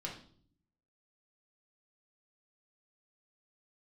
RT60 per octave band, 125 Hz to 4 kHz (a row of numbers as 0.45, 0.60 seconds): 1.0, 0.90, 0.60, 0.45, 0.40, 0.50 seconds